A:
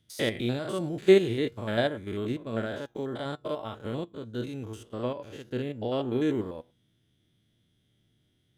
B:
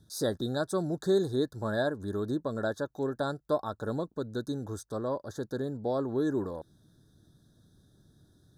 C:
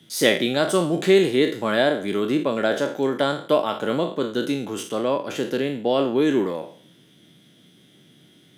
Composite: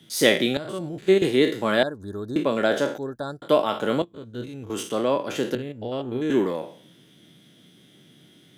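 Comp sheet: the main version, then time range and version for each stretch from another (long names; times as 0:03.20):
C
0:00.57–0:01.22: punch in from A
0:01.83–0:02.36: punch in from B
0:02.98–0:03.42: punch in from B
0:04.02–0:04.70: punch in from A
0:05.55–0:06.30: punch in from A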